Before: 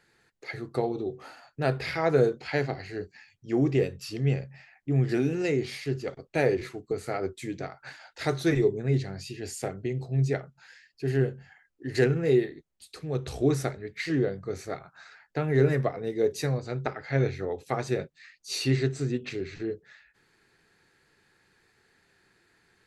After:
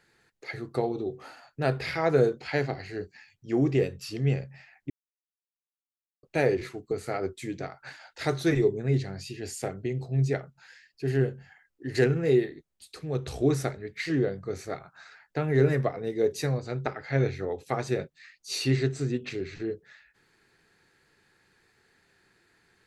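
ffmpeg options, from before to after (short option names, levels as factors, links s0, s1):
-filter_complex "[0:a]asplit=3[s0][s1][s2];[s0]atrim=end=4.9,asetpts=PTS-STARTPTS,afade=t=out:st=4.896:d=0.004:c=hsin[s3];[s1]atrim=start=4.9:end=6.23,asetpts=PTS-STARTPTS,volume=0[s4];[s2]atrim=start=6.23,asetpts=PTS-STARTPTS,afade=t=in:d=0.004:c=hsin[s5];[s3][s4][s5]concat=n=3:v=0:a=1"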